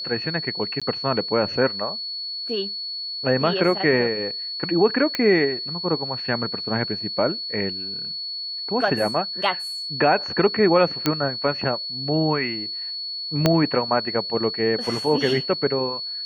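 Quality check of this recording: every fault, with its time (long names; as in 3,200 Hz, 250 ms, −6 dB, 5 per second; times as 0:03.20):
whistle 4,400 Hz −28 dBFS
0:00.80–0:00.82: drop-out 16 ms
0:05.15: click −9 dBFS
0:11.06: click −5 dBFS
0:13.46: click −3 dBFS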